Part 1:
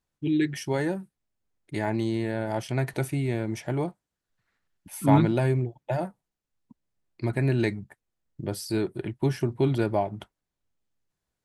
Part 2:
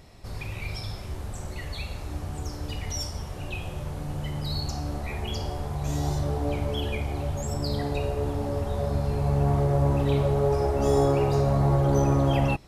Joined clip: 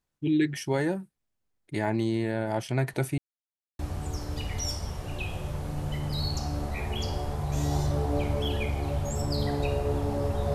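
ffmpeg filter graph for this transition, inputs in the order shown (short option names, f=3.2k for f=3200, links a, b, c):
-filter_complex "[0:a]apad=whole_dur=10.54,atrim=end=10.54,asplit=2[a][b];[a]atrim=end=3.18,asetpts=PTS-STARTPTS,afade=t=out:st=3.176:d=0.004:c=hsin[c];[b]atrim=start=3.18:end=3.79,asetpts=PTS-STARTPTS,volume=0[d];[1:a]atrim=start=2.11:end=8.86,asetpts=PTS-STARTPTS,afade=t=in:d=0.004:c=hsin[e];[c][d][e]concat=n=3:v=0:a=1"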